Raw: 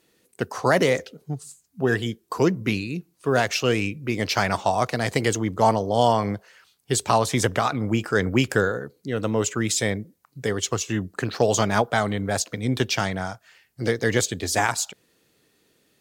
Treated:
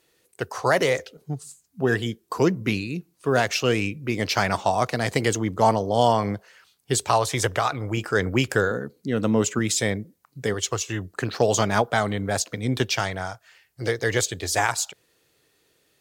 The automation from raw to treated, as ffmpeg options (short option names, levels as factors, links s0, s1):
-af "asetnsamples=n=441:p=0,asendcmd='1.17 equalizer g -0.5;7.05 equalizer g -11.5;7.97 equalizer g -4;8.71 equalizer g 6;9.59 equalizer g 0;10.54 equalizer g -10;11.22 equalizer g -1.5;12.85 equalizer g -10',equalizer=f=220:t=o:w=0.8:g=-11"